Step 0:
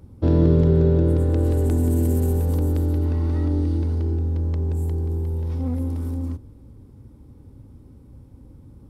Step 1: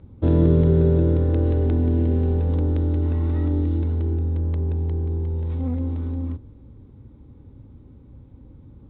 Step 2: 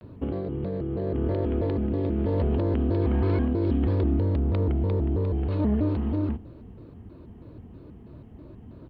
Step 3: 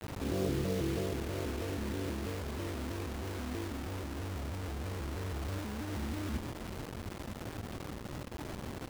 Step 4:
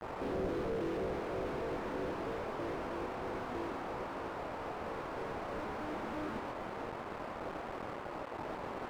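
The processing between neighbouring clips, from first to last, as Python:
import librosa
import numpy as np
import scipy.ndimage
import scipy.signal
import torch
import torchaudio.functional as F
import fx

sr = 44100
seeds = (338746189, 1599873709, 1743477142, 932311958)

y1 = scipy.signal.sosfilt(scipy.signal.cheby1(5, 1.0, 3700.0, 'lowpass', fs=sr, output='sos'), x)
y2 = fx.low_shelf(y1, sr, hz=160.0, db=-11.5)
y2 = fx.over_compress(y2, sr, threshold_db=-29.0, ratio=-1.0)
y2 = fx.vibrato_shape(y2, sr, shape='square', rate_hz=3.1, depth_cents=250.0)
y2 = y2 * librosa.db_to_amplitude(4.5)
y3 = fx.over_compress(y2, sr, threshold_db=-32.0, ratio=-1.0)
y3 = fx.quant_dither(y3, sr, seeds[0], bits=6, dither='none')
y3 = y3 + 10.0 ** (-13.0 / 20.0) * np.pad(y3, (int(140 * sr / 1000.0), 0))[:len(y3)]
y3 = y3 * librosa.db_to_amplitude(-5.5)
y4 = fx.bandpass_edges(y3, sr, low_hz=670.0, high_hz=2200.0)
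y4 = fx.doubler(y4, sr, ms=26.0, db=-12.0)
y4 = fx.slew_limit(y4, sr, full_power_hz=1.7)
y4 = y4 * librosa.db_to_amplitude(15.0)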